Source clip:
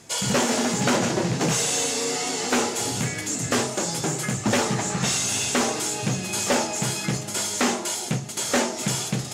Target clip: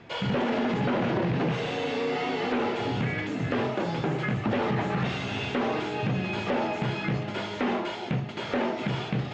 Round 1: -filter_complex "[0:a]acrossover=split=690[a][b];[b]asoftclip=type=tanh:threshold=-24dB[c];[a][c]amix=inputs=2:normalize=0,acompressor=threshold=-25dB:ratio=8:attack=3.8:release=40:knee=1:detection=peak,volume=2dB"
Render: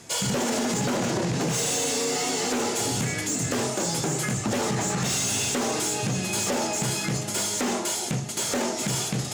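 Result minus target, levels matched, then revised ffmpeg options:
4000 Hz band +4.0 dB
-filter_complex "[0:a]acrossover=split=690[a][b];[b]asoftclip=type=tanh:threshold=-24dB[c];[a][c]amix=inputs=2:normalize=0,acompressor=threshold=-25dB:ratio=8:attack=3.8:release=40:knee=1:detection=peak,lowpass=f=3.1k:w=0.5412,lowpass=f=3.1k:w=1.3066,volume=2dB"

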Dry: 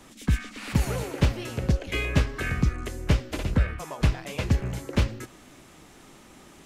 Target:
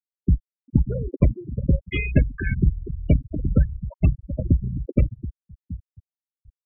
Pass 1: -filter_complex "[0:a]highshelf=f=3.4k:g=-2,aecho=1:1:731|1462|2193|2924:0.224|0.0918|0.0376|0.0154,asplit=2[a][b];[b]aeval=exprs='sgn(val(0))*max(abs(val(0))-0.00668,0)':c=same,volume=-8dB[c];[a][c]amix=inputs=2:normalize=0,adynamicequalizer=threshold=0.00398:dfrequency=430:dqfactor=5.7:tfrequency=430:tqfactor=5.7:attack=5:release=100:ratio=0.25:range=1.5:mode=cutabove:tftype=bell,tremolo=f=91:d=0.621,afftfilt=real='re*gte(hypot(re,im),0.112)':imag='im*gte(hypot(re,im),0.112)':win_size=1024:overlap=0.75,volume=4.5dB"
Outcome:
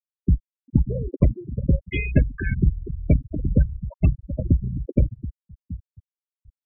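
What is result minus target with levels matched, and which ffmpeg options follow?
4000 Hz band -3.0 dB
-filter_complex "[0:a]aecho=1:1:731|1462|2193|2924:0.224|0.0918|0.0376|0.0154,asplit=2[a][b];[b]aeval=exprs='sgn(val(0))*max(abs(val(0))-0.00668,0)':c=same,volume=-8dB[c];[a][c]amix=inputs=2:normalize=0,adynamicequalizer=threshold=0.00398:dfrequency=430:dqfactor=5.7:tfrequency=430:tqfactor=5.7:attack=5:release=100:ratio=0.25:range=1.5:mode=cutabove:tftype=bell,tremolo=f=91:d=0.621,afftfilt=real='re*gte(hypot(re,im),0.112)':imag='im*gte(hypot(re,im),0.112)':win_size=1024:overlap=0.75,volume=4.5dB"

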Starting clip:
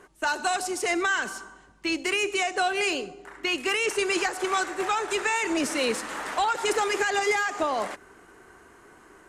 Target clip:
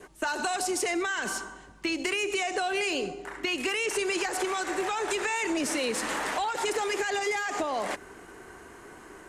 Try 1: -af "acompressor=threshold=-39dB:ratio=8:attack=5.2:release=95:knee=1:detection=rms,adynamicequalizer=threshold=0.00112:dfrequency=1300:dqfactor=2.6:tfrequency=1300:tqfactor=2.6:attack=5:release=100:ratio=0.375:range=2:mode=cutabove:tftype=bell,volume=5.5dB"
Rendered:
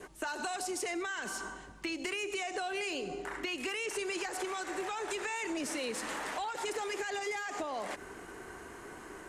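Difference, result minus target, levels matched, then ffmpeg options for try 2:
compressor: peak gain reduction +7.5 dB
-af "acompressor=threshold=-30.5dB:ratio=8:attack=5.2:release=95:knee=1:detection=rms,adynamicequalizer=threshold=0.00112:dfrequency=1300:dqfactor=2.6:tfrequency=1300:tqfactor=2.6:attack=5:release=100:ratio=0.375:range=2:mode=cutabove:tftype=bell,volume=5.5dB"

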